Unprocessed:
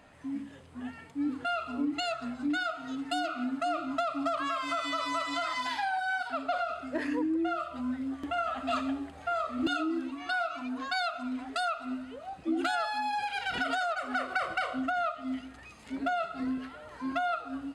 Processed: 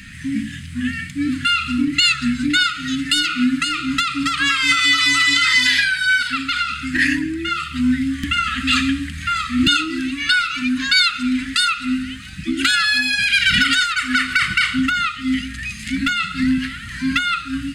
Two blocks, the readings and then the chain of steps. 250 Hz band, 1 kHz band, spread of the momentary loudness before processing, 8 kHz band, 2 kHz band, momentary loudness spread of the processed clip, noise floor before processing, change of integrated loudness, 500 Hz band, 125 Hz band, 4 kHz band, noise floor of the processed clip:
+12.5 dB, +6.5 dB, 8 LU, +23.0 dB, +18.0 dB, 11 LU, −50 dBFS, +15.0 dB, can't be measured, +23.0 dB, +22.5 dB, −32 dBFS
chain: Chebyshev band-stop filter 210–1,800 Hz, order 3
boost into a limiter +28 dB
level −4 dB

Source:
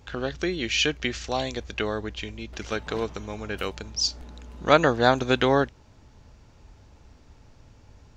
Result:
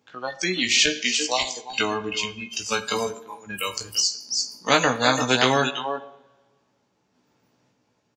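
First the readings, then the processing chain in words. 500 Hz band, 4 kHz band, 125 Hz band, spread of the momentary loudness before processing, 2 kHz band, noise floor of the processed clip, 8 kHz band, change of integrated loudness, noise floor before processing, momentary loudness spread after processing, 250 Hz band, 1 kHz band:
−1.5 dB, +6.5 dB, −3.0 dB, 15 LU, +4.5 dB, −70 dBFS, +10.5 dB, +3.0 dB, −54 dBFS, 12 LU, −0.5 dB, +2.0 dB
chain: high-pass filter 150 Hz 24 dB per octave
single-tap delay 340 ms −9.5 dB
sample-and-hold tremolo
dynamic equaliser 320 Hz, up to +3 dB, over −41 dBFS, Q 2.5
noise reduction from a noise print of the clip's start 30 dB
double-tracking delay 16 ms −5 dB
coupled-rooms reverb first 0.57 s, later 1.7 s, from −23 dB, DRR 18.5 dB
every bin compressed towards the loudest bin 2 to 1
level +4 dB

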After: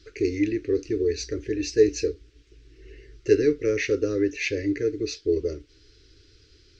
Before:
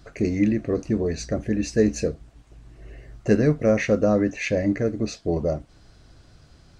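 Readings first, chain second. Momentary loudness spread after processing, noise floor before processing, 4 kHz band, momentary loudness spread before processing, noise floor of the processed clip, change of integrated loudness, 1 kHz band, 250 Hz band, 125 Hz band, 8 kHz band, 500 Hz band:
9 LU, −53 dBFS, +3.0 dB, 9 LU, −57 dBFS, −2.0 dB, below −15 dB, −4.5 dB, −9.0 dB, 0.0 dB, +0.5 dB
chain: drawn EQ curve 100 Hz 0 dB, 200 Hz −21 dB, 290 Hz +3 dB, 430 Hz +10 dB, 720 Hz −30 dB, 1,400 Hz −2 dB, 2,300 Hz +6 dB, 5,500 Hz +9 dB, 10,000 Hz −12 dB
level −5 dB

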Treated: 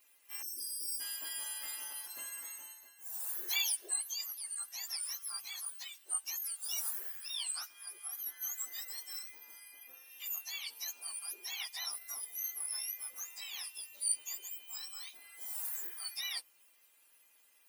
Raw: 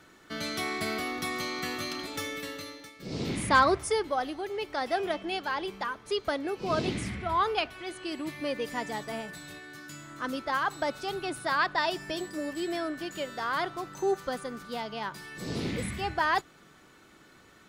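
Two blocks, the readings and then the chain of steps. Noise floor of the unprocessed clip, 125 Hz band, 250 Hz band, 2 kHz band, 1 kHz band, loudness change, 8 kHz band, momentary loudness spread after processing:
−57 dBFS, below −40 dB, below −35 dB, −15.5 dB, −27.5 dB, −7.0 dB, +7.5 dB, 11 LU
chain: frequency axis turned over on the octave scale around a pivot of 1,900 Hz
first difference
gain on a spectral selection 0:00.42–0:01.00, 480–4,700 Hz −25 dB
level −1.5 dB

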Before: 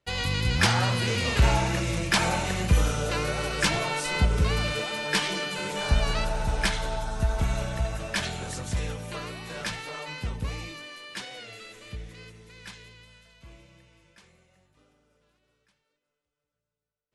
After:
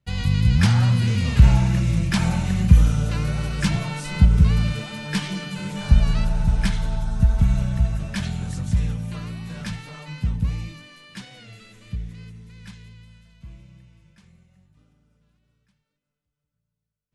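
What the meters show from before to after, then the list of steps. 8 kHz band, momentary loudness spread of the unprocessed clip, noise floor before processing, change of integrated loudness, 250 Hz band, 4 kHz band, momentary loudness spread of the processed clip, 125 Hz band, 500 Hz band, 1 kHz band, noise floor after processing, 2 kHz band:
−4.0 dB, 18 LU, −85 dBFS, +6.0 dB, +8.5 dB, −4.0 dB, 17 LU, +9.5 dB, −6.0 dB, −5.0 dB, −81 dBFS, −4.0 dB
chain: low shelf with overshoot 270 Hz +12 dB, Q 1.5
level −4 dB

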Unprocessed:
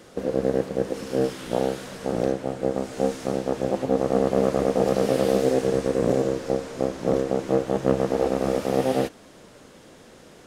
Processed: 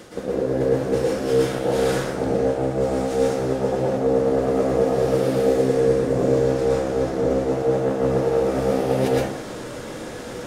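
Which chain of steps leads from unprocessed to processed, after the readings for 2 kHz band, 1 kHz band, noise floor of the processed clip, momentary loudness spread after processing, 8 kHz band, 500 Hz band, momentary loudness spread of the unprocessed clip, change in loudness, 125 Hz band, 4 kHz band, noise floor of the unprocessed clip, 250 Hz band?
+4.5 dB, +2.0 dB, −34 dBFS, 6 LU, +2.5 dB, +4.0 dB, 6 LU, +3.5 dB, +5.0 dB, +2.5 dB, −49 dBFS, +2.0 dB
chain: reversed playback
downward compressor 5 to 1, threshold −33 dBFS, peak gain reduction 17 dB
reversed playback
dense smooth reverb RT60 0.75 s, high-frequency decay 0.45×, pre-delay 100 ms, DRR −6 dB
level +8 dB

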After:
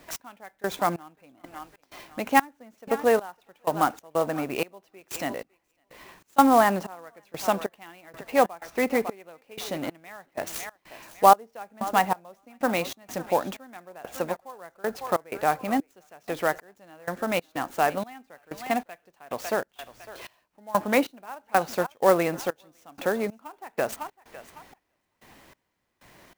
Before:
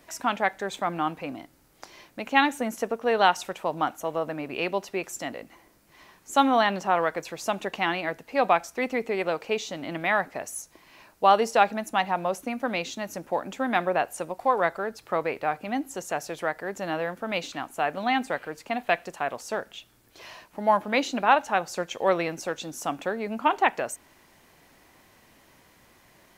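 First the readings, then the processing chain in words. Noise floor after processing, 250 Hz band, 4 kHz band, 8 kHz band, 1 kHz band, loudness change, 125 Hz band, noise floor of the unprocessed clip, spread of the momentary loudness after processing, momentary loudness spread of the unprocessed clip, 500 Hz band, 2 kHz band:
−74 dBFS, +1.0 dB, −4.5 dB, 0.0 dB, −0.5 dB, +0.5 dB, +1.0 dB, −59 dBFS, 22 LU, 12 LU, +0.5 dB, −3.5 dB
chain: treble cut that deepens with the level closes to 1,900 Hz, closed at −17.5 dBFS
feedback echo with a high-pass in the loop 554 ms, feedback 28%, high-pass 420 Hz, level −16.5 dB
gate pattern "x...xx...xx.xx" 94 BPM −24 dB
dynamic equaliser 2,900 Hz, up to −4 dB, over −43 dBFS, Q 1.1
converter with an unsteady clock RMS 0.025 ms
level +4 dB

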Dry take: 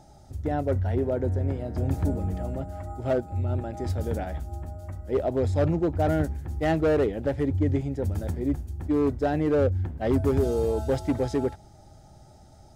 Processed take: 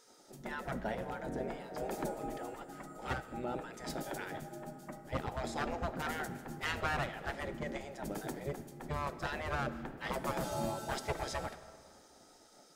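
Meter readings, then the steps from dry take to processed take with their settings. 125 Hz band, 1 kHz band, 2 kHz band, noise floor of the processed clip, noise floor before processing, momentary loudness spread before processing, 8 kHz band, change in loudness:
−17.5 dB, −4.0 dB, 0.0 dB, −61 dBFS, −51 dBFS, 9 LU, can't be measured, −12.5 dB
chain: gate on every frequency bin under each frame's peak −15 dB weak
comb and all-pass reverb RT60 2.1 s, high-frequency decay 0.65×, pre-delay 10 ms, DRR 13 dB
level +1 dB

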